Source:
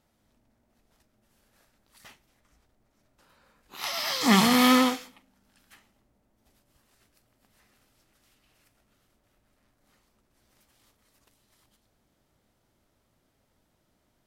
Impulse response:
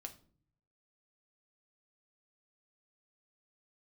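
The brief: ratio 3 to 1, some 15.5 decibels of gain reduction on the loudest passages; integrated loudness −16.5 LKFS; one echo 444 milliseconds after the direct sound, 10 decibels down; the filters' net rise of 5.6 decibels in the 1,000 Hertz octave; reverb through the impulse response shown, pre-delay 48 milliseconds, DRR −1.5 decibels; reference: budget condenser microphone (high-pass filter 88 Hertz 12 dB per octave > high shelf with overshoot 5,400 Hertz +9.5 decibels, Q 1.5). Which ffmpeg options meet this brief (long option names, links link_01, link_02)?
-filter_complex "[0:a]equalizer=frequency=1000:width_type=o:gain=7.5,acompressor=threshold=-35dB:ratio=3,aecho=1:1:444:0.316,asplit=2[link_01][link_02];[1:a]atrim=start_sample=2205,adelay=48[link_03];[link_02][link_03]afir=irnorm=-1:irlink=0,volume=6dB[link_04];[link_01][link_04]amix=inputs=2:normalize=0,highpass=88,highshelf=frequency=5400:width_type=q:width=1.5:gain=9.5,volume=13.5dB"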